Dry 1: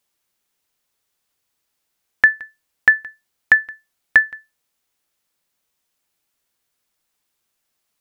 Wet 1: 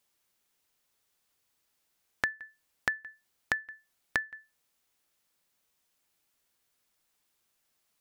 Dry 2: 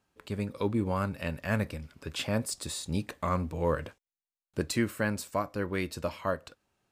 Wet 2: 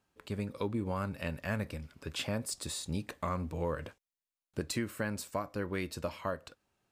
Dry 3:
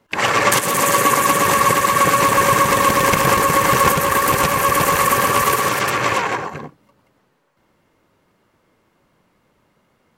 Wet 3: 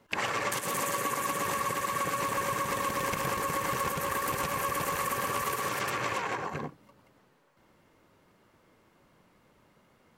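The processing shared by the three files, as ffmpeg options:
-af "acompressor=threshold=0.0398:ratio=5,volume=0.794"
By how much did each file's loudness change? -18.0 LU, -4.5 LU, -15.5 LU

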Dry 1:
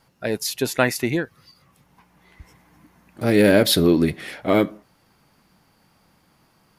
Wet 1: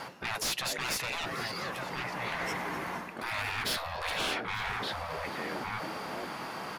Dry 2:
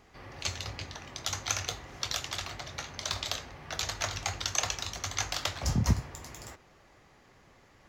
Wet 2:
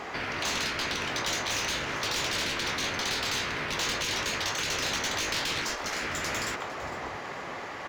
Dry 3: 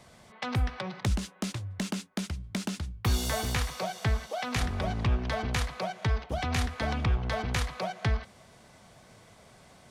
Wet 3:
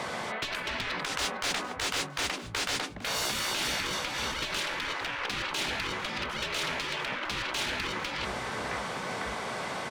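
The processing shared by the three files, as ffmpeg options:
-filter_complex "[0:a]lowshelf=f=120:g=-4,asplit=2[s0][s1];[s1]adelay=1166,volume=0.0708,highshelf=f=4000:g=-26.2[s2];[s0][s2]amix=inputs=2:normalize=0,areverse,acompressor=threshold=0.0224:ratio=20,areverse,asplit=2[s3][s4];[s4]highpass=f=720:p=1,volume=17.8,asoftclip=type=tanh:threshold=0.0794[s5];[s3][s5]amix=inputs=2:normalize=0,lowpass=f=1700:p=1,volume=0.501,asplit=2[s6][s7];[s7]asplit=3[s8][s9][s10];[s8]adelay=455,afreqshift=45,volume=0.126[s11];[s9]adelay=910,afreqshift=90,volume=0.0417[s12];[s10]adelay=1365,afreqshift=135,volume=0.0136[s13];[s11][s12][s13]amix=inputs=3:normalize=0[s14];[s6][s14]amix=inputs=2:normalize=0,afftfilt=real='re*lt(hypot(re,im),0.0398)':imag='im*lt(hypot(re,im),0.0398)':win_size=1024:overlap=0.75,volume=2.66"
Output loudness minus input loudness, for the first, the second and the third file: -14.0 LU, +4.0 LU, +0.5 LU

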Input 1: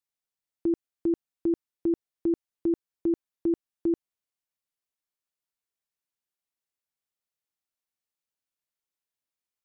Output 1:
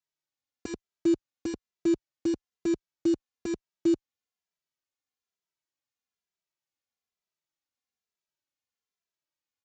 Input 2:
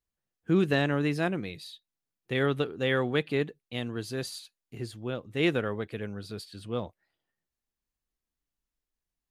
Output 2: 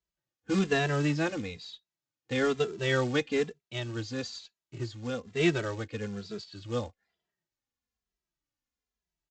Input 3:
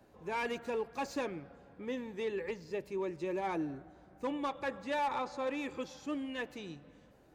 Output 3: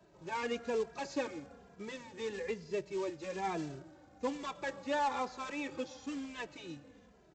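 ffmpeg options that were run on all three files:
-filter_complex "[0:a]highpass=41,aresample=16000,acrusher=bits=4:mode=log:mix=0:aa=0.000001,aresample=44100,asplit=2[s0][s1];[s1]adelay=2.6,afreqshift=-1.1[s2];[s0][s2]amix=inputs=2:normalize=1,volume=1.33"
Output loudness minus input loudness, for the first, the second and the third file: 0.0 LU, -1.0 LU, -1.0 LU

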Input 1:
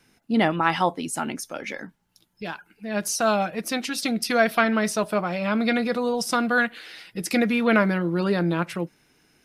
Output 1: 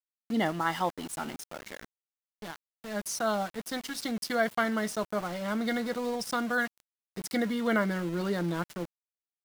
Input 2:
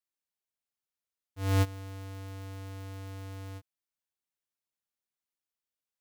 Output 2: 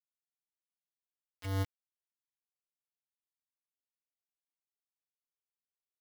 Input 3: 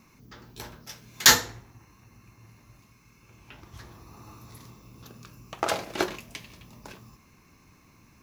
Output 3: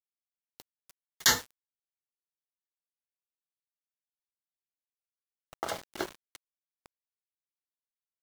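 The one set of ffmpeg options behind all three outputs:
-af "asuperstop=centerf=2500:order=12:qfactor=5.1,aeval=exprs='val(0)*gte(abs(val(0)),0.0282)':c=same,volume=0.422"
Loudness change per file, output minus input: -7.5 LU, -2.5 LU, -7.5 LU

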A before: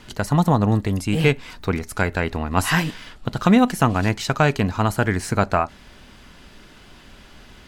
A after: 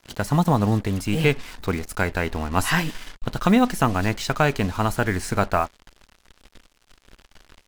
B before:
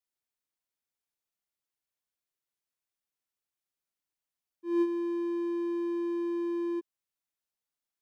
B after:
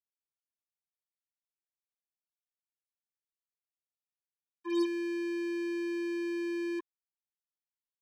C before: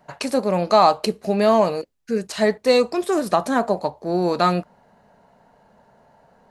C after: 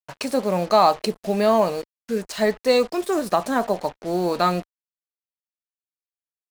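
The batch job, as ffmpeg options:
-af "acrusher=bits=5:mix=0:aa=0.5,asubboost=boost=4:cutoff=52,volume=0.841"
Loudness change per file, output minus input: -2.0 LU, -2.0 LU, -1.5 LU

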